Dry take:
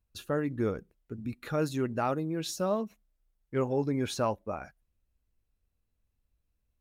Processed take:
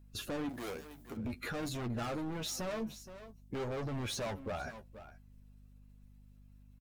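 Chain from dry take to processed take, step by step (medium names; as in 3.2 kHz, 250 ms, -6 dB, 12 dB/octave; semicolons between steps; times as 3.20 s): coarse spectral quantiser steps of 15 dB; overload inside the chain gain 36 dB; 2.79–3.55 s: peaking EQ 1.7 kHz -13 dB 1.3 oct; delay 471 ms -21.5 dB; flange 0.51 Hz, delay 8.3 ms, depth 5.4 ms, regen +24%; peak limiter -45 dBFS, peak gain reduction 9.5 dB; 0.49–1.17 s: RIAA curve recording; hum 50 Hz, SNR 17 dB; trim +12.5 dB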